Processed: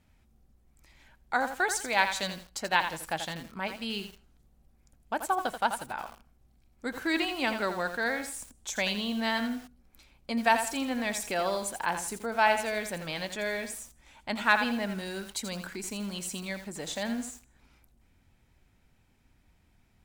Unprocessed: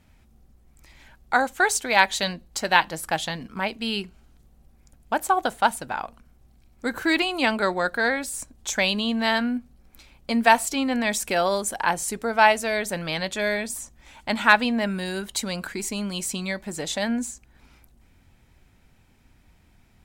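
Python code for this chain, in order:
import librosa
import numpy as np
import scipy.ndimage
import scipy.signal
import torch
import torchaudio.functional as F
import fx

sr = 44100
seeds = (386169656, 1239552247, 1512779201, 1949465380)

y = fx.echo_feedback(x, sr, ms=78, feedback_pct=45, wet_db=-23.0)
y = fx.echo_crushed(y, sr, ms=84, feedback_pct=35, bits=6, wet_db=-8.0)
y = y * librosa.db_to_amplitude(-7.5)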